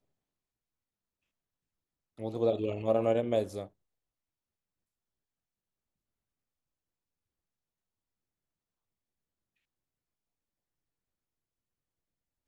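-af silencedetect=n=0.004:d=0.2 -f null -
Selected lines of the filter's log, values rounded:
silence_start: 0.00
silence_end: 2.19 | silence_duration: 2.19
silence_start: 3.67
silence_end: 12.48 | silence_duration: 8.80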